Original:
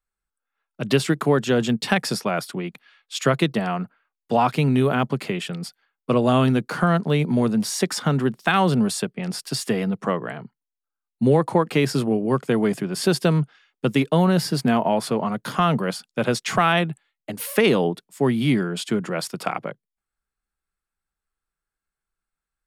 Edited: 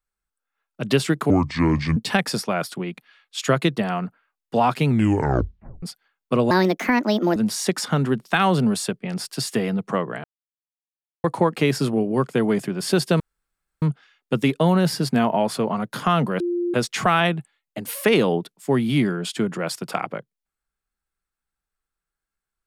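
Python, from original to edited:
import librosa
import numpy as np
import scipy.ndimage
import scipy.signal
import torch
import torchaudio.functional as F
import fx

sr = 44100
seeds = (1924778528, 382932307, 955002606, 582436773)

y = fx.edit(x, sr, fx.speed_span(start_s=1.3, length_s=0.44, speed=0.66),
    fx.tape_stop(start_s=4.64, length_s=0.96),
    fx.speed_span(start_s=6.28, length_s=1.22, speed=1.43),
    fx.silence(start_s=10.38, length_s=1.0),
    fx.insert_room_tone(at_s=13.34, length_s=0.62),
    fx.bleep(start_s=15.92, length_s=0.34, hz=349.0, db=-20.5), tone=tone)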